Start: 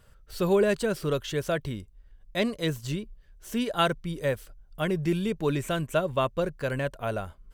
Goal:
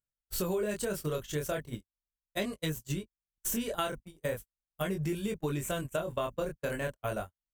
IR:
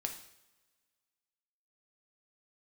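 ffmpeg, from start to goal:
-af "acompressor=mode=upward:threshold=0.0398:ratio=2.5,flanger=delay=19.5:depth=7.4:speed=0.38,aeval=exprs='val(0)+0.00251*(sin(2*PI*50*n/s)+sin(2*PI*2*50*n/s)/2+sin(2*PI*3*50*n/s)/3+sin(2*PI*4*50*n/s)/4+sin(2*PI*5*50*n/s)/5)':c=same,aexciter=amount=3.8:drive=1:freq=6300,agate=range=0.00158:threshold=0.02:ratio=16:detection=peak,acompressor=threshold=0.0282:ratio=5,volume=1.19"

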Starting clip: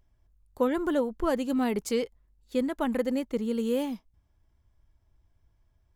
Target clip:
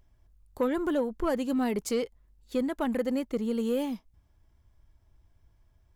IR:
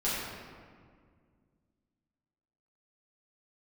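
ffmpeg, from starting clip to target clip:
-filter_complex "[0:a]asplit=2[s0][s1];[s1]acompressor=threshold=0.0126:ratio=6,volume=0.794[s2];[s0][s2]amix=inputs=2:normalize=0,asoftclip=type=tanh:threshold=0.158,volume=0.841"

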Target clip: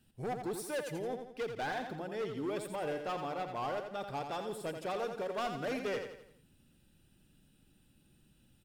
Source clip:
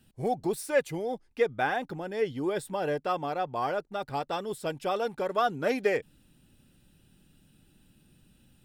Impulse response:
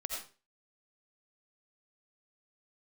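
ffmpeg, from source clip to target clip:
-af "asoftclip=type=hard:threshold=0.0447,aecho=1:1:85|170|255|340|425:0.447|0.201|0.0905|0.0407|0.0183,volume=0.501"

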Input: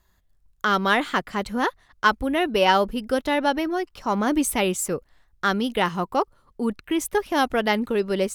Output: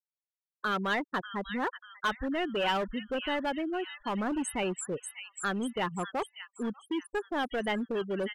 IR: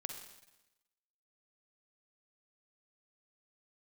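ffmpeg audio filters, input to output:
-filter_complex "[0:a]afftfilt=real='re*gte(hypot(re,im),0.112)':imag='im*gte(hypot(re,im),0.112)':win_size=1024:overlap=0.75,acrossover=split=1800[s0][s1];[s0]asoftclip=type=hard:threshold=0.0891[s2];[s1]aecho=1:1:591|1182|1773|2364|2955:0.631|0.271|0.117|0.0502|0.0216[s3];[s2][s3]amix=inputs=2:normalize=0,volume=0.447"

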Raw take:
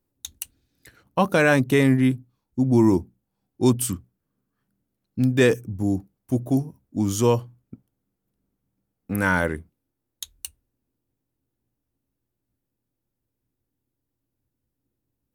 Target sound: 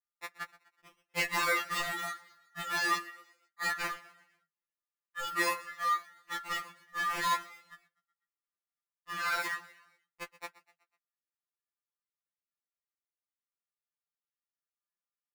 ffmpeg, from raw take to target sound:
-filter_complex "[0:a]asettb=1/sr,asplit=3[s0][s1][s2];[s0]atrim=end=1.224[s3];[s1]atrim=start=1.22:end=3.8,asetpts=PTS-STARTPTS,afade=t=in:d=0.004:c=qsin,afade=t=out:st=2.576:d=0.004:c=qsin,lowpass=f=2300:w=0.5412,lowpass=f=2300:w=1.3066[s4];[s2]atrim=start=3.796[s5];[s3][s4]acrossfade=d=0.004:c1=hsin:c2=qsin[s6];[s6][s5]acrossfade=d=0.004:c1=qsin:c2=hsin,agate=range=0.141:threshold=0.00282:ratio=16:detection=peak,highpass=280,acrusher=samples=22:mix=1:aa=0.000001:lfo=1:lforange=13.2:lforate=0.78,aeval=exprs='val(0)*sin(2*PI*1500*n/s)':c=same,asoftclip=type=tanh:threshold=0.0841,asplit=5[s7][s8][s9][s10][s11];[s8]adelay=124,afreqshift=38,volume=0.112[s12];[s9]adelay=248,afreqshift=76,volume=0.0519[s13];[s10]adelay=372,afreqshift=114,volume=0.0237[s14];[s11]adelay=496,afreqshift=152,volume=0.011[s15];[s7][s12][s13][s14][s15]amix=inputs=5:normalize=0,afftfilt=real='re*2.83*eq(mod(b,8),0)':imag='im*2.83*eq(mod(b,8),0)':win_size=2048:overlap=0.75"

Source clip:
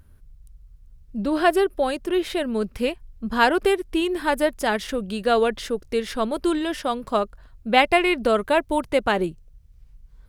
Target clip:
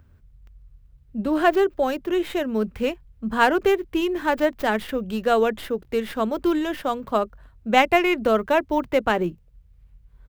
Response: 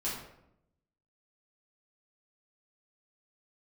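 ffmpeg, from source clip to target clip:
-filter_complex "[0:a]highpass=42,acrossover=split=300|3900[s0][s1][s2];[s0]asplit=2[s3][s4];[s4]adelay=23,volume=0.501[s5];[s3][s5]amix=inputs=2:normalize=0[s6];[s2]aeval=exprs='abs(val(0))':c=same[s7];[s6][s1][s7]amix=inputs=3:normalize=0"

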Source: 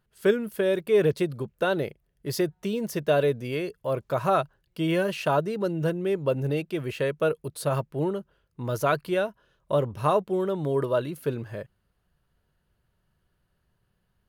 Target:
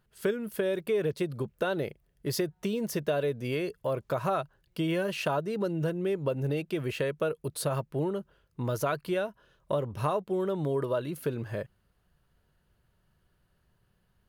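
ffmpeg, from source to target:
-af "acompressor=threshold=0.0316:ratio=3,volume=1.26"

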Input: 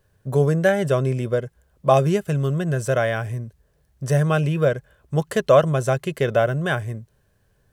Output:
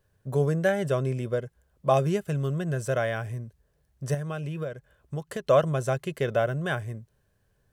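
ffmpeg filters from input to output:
-filter_complex "[0:a]asettb=1/sr,asplit=3[s0][s1][s2];[s0]atrim=end=4.144[s3];[s1]atrim=start=4.14:end=5.47,asetpts=PTS-STARTPTS,afade=t=in:d=0.004:c=qsin,afade=t=out:st=1.326:d=0.004:c=qsin,acompressor=threshold=0.0631:ratio=6[s4];[s2]atrim=start=5.466[s5];[s3][s4]acrossfade=d=0.004:c1=hsin:c2=qsin[s6];[s6][s5]acrossfade=d=0.004:c1=qsin:c2=hsin,volume=0.501"

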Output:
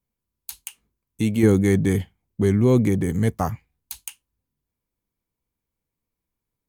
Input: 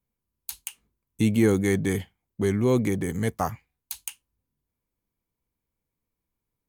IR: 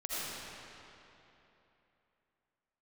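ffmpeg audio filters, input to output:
-filter_complex "[0:a]asettb=1/sr,asplit=3[s0][s1][s2];[s0]atrim=end=1.434[s3];[s1]atrim=start=1.43:end=4,asetpts=PTS-STARTPTS,afade=t=in:d=0.004:c=qsin,afade=t=out:st=2.566:d=0.004:c=qsin,lowshelf=f=340:g=8[s4];[s2]atrim=start=3.996[s5];[s3][s4]acrossfade=d=0.004:c1=hsin:c2=qsin[s6];[s6][s5]acrossfade=d=0.004:c1=qsin:c2=hsin"

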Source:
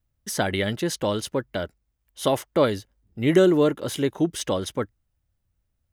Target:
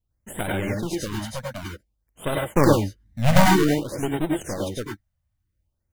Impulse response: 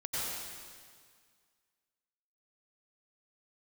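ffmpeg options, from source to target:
-filter_complex "[0:a]asplit=3[s0][s1][s2];[s0]afade=t=out:st=2.39:d=0.02[s3];[s1]lowshelf=f=490:g=7.5,afade=t=in:st=2.39:d=0.02,afade=t=out:st=3.45:d=0.02[s4];[s2]afade=t=in:st=3.45:d=0.02[s5];[s3][s4][s5]amix=inputs=3:normalize=0,asplit=2[s6][s7];[s7]acrusher=samples=31:mix=1:aa=0.000001:lfo=1:lforange=18.6:lforate=1.2,volume=0.668[s8];[s6][s8]amix=inputs=2:normalize=0,aeval=exprs='1.33*(cos(1*acos(clip(val(0)/1.33,-1,1)))-cos(1*PI/2))+0.596*(cos(4*acos(clip(val(0)/1.33,-1,1)))-cos(4*PI/2))':c=same[s9];[1:a]atrim=start_sample=2205,afade=t=out:st=0.16:d=0.01,atrim=end_sample=7497[s10];[s9][s10]afir=irnorm=-1:irlink=0,afftfilt=real='re*(1-between(b*sr/1024,340*pow(5700/340,0.5+0.5*sin(2*PI*0.53*pts/sr))/1.41,340*pow(5700/340,0.5+0.5*sin(2*PI*0.53*pts/sr))*1.41))':imag='im*(1-between(b*sr/1024,340*pow(5700/340,0.5+0.5*sin(2*PI*0.53*pts/sr))/1.41,340*pow(5700/340,0.5+0.5*sin(2*PI*0.53*pts/sr))*1.41))':win_size=1024:overlap=0.75,volume=0.631"

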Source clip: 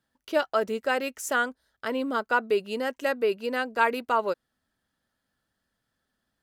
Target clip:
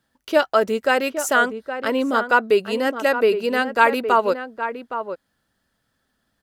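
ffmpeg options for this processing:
-filter_complex "[0:a]asplit=2[s0][s1];[s1]adelay=816.3,volume=0.355,highshelf=f=4000:g=-18.4[s2];[s0][s2]amix=inputs=2:normalize=0,volume=2.37"

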